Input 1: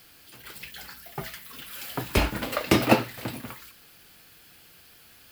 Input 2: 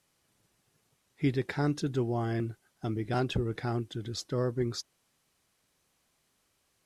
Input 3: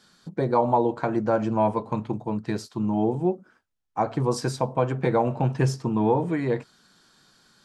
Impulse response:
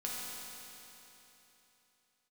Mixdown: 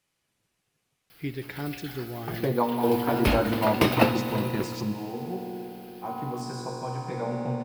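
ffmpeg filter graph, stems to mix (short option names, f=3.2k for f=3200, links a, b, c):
-filter_complex "[0:a]equalizer=f=7.1k:w=2.3:g=-11.5,adelay=1100,volume=-3.5dB,asplit=2[a][b];[b]volume=-7dB[c];[1:a]equalizer=f=2.5k:w=1.5:g=5,volume=-7.5dB,asplit=3[d][e][f];[e]volume=-9dB[g];[2:a]adelay=2050,volume=-5dB,asplit=2[h][i];[i]volume=-5dB[j];[f]apad=whole_len=427495[k];[h][k]sidechaingate=range=-33dB:threshold=-57dB:ratio=16:detection=peak[l];[3:a]atrim=start_sample=2205[m];[c][g][j]amix=inputs=3:normalize=0[n];[n][m]afir=irnorm=-1:irlink=0[o];[a][d][l][o]amix=inputs=4:normalize=0"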